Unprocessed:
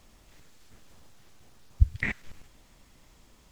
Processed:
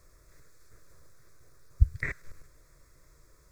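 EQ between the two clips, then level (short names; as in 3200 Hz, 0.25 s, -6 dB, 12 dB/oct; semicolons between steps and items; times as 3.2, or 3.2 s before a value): bell 150 Hz +7 dB 0.43 oct; fixed phaser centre 810 Hz, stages 6; 0.0 dB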